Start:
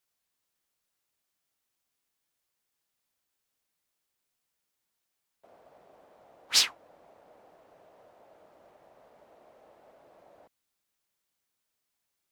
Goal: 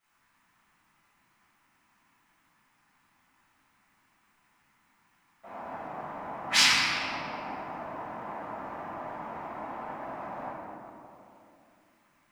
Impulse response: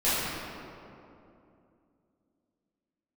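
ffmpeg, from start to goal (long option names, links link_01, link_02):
-filter_complex "[0:a]equalizer=frequency=125:width_type=o:width=1:gain=5,equalizer=frequency=250:width_type=o:width=1:gain=7,equalizer=frequency=500:width_type=o:width=1:gain=-10,equalizer=frequency=1000:width_type=o:width=1:gain=12,equalizer=frequency=2000:width_type=o:width=1:gain=7,equalizer=frequency=4000:width_type=o:width=1:gain=-6,equalizer=frequency=16000:width_type=o:width=1:gain=-10,asettb=1/sr,asplit=3[link_01][link_02][link_03];[link_01]atrim=end=5.904[link_04];[link_02]atrim=start=5.9:end=6.91,asetpts=PTS-STARTPTS,afade=type=in:duration=0.004:curve=qsin,afade=type=out:start_time=1.006:duration=0.004:curve=qsin,acrossover=split=260|2600[link_05][link_06][link_07];[link_05]acompressor=threshold=-57dB:ratio=4[link_08];[link_06]acompressor=threshold=-43dB:ratio=4[link_09];[link_07]acompressor=threshold=-31dB:ratio=4[link_10];[link_08][link_09][link_10]amix=inputs=3:normalize=0[link_11];[link_03]atrim=start=6.906[link_12];[link_04][link_11]acrossfade=duration=0.004:curve1=hsin:curve2=qsin[link_13];[link_13][link_12]acrossfade=duration=0.004:curve1=qsin:curve2=hsin,bandreject=frequency=1100:width=22[link_14];[1:a]atrim=start_sample=2205[link_15];[link_14][link_15]afir=irnorm=-1:irlink=0,volume=1dB"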